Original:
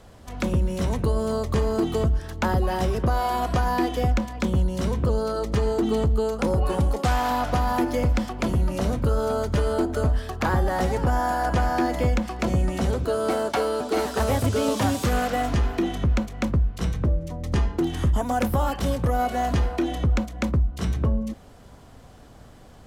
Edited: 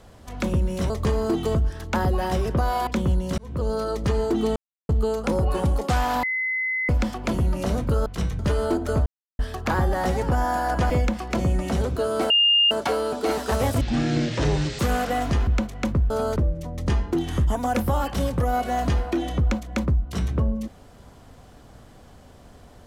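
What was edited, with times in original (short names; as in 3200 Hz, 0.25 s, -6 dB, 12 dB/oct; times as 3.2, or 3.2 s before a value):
0.9–1.39 cut
3.36–4.35 cut
4.86–5.21 fade in
6.04 insert silence 0.33 s
7.38–8.04 bleep 2040 Hz -22.5 dBFS
9.21–9.47 swap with 16.69–17.02
10.14 insert silence 0.33 s
11.65–11.99 cut
13.39 add tone 2820 Hz -14.5 dBFS 0.41 s
14.49–15.02 speed 54%
15.7–16.06 cut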